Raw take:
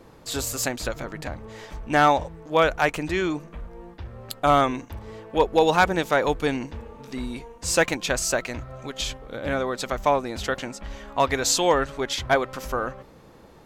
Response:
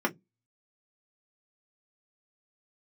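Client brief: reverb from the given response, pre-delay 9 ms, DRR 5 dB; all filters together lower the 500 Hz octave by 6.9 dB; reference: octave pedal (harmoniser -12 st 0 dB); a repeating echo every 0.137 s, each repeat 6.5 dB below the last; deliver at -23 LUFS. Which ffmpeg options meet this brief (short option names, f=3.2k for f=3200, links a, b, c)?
-filter_complex "[0:a]equalizer=f=500:t=o:g=-8.5,aecho=1:1:137|274|411|548|685|822:0.473|0.222|0.105|0.0491|0.0231|0.0109,asplit=2[a][b];[1:a]atrim=start_sample=2205,adelay=9[c];[b][c]afir=irnorm=-1:irlink=0,volume=-15dB[d];[a][d]amix=inputs=2:normalize=0,asplit=2[e][f];[f]asetrate=22050,aresample=44100,atempo=2,volume=0dB[g];[e][g]amix=inputs=2:normalize=0,volume=-0.5dB"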